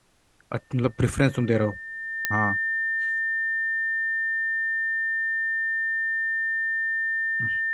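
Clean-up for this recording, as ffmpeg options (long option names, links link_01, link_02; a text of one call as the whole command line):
ffmpeg -i in.wav -af "adeclick=threshold=4,bandreject=frequency=1800:width=30,agate=range=-21dB:threshold=-31dB" out.wav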